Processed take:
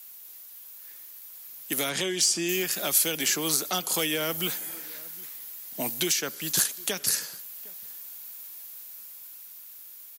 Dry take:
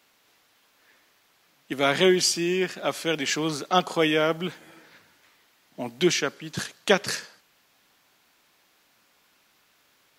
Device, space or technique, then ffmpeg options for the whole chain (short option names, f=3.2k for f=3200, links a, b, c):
FM broadcast chain: -filter_complex "[0:a]asettb=1/sr,asplit=3[a][b][c];[a]atrim=end=1.894[d];[b]atrim=start=1.89:end=2.49,asetpts=PTS-STARTPTS,afade=t=in:d=0.004:c=qsin,afade=t=out:st=0.596:d=0.004:c=qsin,lowpass=f=8.9k:w=0.5412,lowpass=f=8.9k:w=1.3066[e];[c]atrim=start=2.486[f];[d][e]acrossfade=d=0.004:c1=hsin:c2=qsin[g];[g][f]acrossfade=d=0.004:c1=qsin:c2=hsin,highpass=73,dynaudnorm=f=400:g=9:m=11.5dB,acrossover=split=290|1800[h][i][j];[h]acompressor=threshold=-34dB:ratio=4[k];[i]acompressor=threshold=-28dB:ratio=4[l];[j]acompressor=threshold=-31dB:ratio=4[m];[k][l][m]amix=inputs=3:normalize=0,aemphasis=mode=production:type=50fm,alimiter=limit=-15.5dB:level=0:latency=1:release=223,asoftclip=type=hard:threshold=-19dB,lowpass=f=15k:w=0.5412,lowpass=f=15k:w=1.3066,aemphasis=mode=production:type=50fm,asplit=2[n][o];[o]adelay=758,volume=-23dB,highshelf=f=4k:g=-17.1[p];[n][p]amix=inputs=2:normalize=0,volume=-2.5dB"